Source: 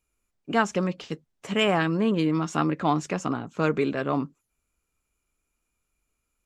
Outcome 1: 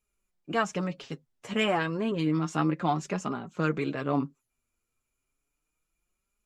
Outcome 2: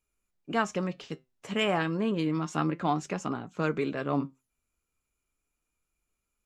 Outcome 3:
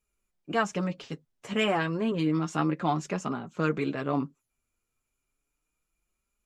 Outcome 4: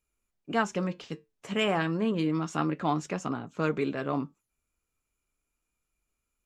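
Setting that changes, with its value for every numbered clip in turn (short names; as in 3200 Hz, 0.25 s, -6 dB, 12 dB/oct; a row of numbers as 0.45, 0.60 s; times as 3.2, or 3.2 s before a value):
flange, regen: +22, +79, -21, -78%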